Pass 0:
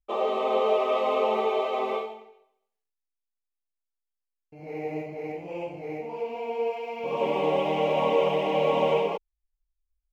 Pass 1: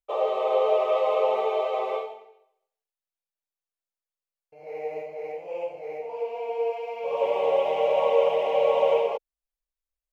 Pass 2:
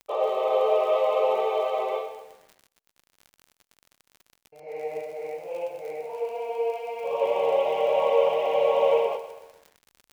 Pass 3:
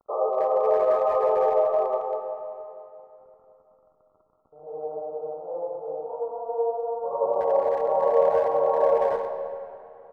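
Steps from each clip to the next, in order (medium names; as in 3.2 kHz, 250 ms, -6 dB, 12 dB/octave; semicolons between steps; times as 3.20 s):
resonant low shelf 370 Hz -11 dB, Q 3; trim -3 dB
crackle 40 per s -37 dBFS; bit-crushed delay 126 ms, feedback 55%, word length 8-bit, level -13 dB
brick-wall FIR low-pass 1.4 kHz; speakerphone echo 190 ms, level -8 dB; reverberation RT60 3.3 s, pre-delay 10 ms, DRR 7 dB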